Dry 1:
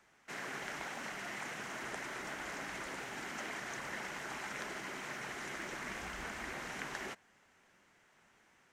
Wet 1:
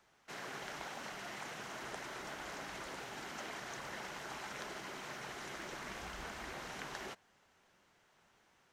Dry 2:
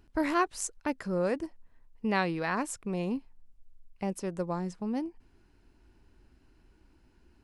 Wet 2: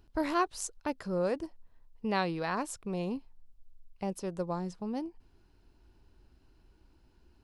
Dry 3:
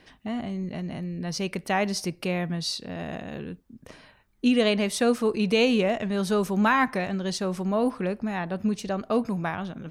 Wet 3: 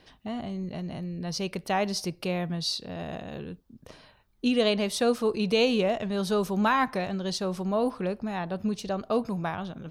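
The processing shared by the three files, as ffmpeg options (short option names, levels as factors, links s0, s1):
-af "equalizer=f=250:t=o:w=1:g=-4,equalizer=f=2000:t=o:w=1:g=-6,equalizer=f=4000:t=o:w=1:g=3,equalizer=f=8000:t=o:w=1:g=-4"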